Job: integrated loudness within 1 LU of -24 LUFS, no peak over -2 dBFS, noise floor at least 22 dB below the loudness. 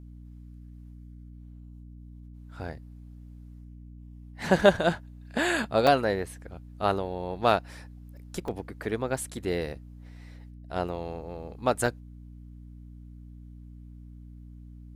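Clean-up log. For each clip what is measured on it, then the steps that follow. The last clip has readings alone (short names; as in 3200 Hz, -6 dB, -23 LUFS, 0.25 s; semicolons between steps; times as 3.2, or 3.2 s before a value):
dropouts 3; longest dropout 3.2 ms; hum 60 Hz; harmonics up to 300 Hz; hum level -43 dBFS; loudness -28.5 LUFS; peak -4.5 dBFS; loudness target -24.0 LUFS
-> interpolate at 5.87/8.48/11.86, 3.2 ms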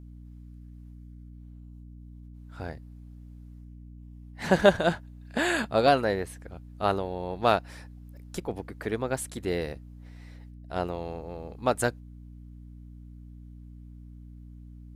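dropouts 0; hum 60 Hz; harmonics up to 300 Hz; hum level -43 dBFS
-> de-hum 60 Hz, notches 5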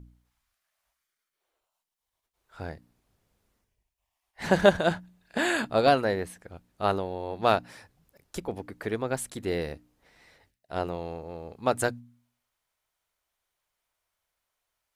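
hum none; loudness -28.0 LUFS; peak -4.5 dBFS; loudness target -24.0 LUFS
-> gain +4 dB; limiter -2 dBFS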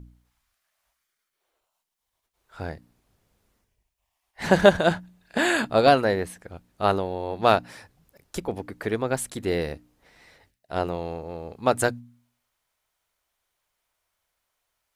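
loudness -24.5 LUFS; peak -2.0 dBFS; noise floor -81 dBFS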